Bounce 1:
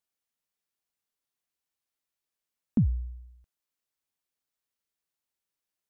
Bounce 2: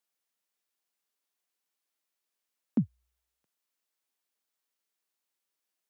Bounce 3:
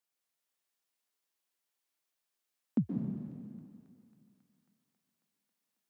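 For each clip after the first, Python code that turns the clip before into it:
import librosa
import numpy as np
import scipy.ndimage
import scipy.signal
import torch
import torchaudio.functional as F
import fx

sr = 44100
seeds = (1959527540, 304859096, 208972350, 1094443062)

y1 = scipy.signal.sosfilt(scipy.signal.bessel(6, 250.0, 'highpass', norm='mag', fs=sr, output='sos'), x)
y1 = y1 * librosa.db_to_amplitude(2.5)
y2 = fx.echo_wet_highpass(y1, sr, ms=272, feedback_pct=80, hz=1400.0, wet_db=-17)
y2 = fx.rev_plate(y2, sr, seeds[0], rt60_s=2.3, hf_ratio=1.0, predelay_ms=115, drr_db=0.5)
y2 = y2 * librosa.db_to_amplitude(-3.0)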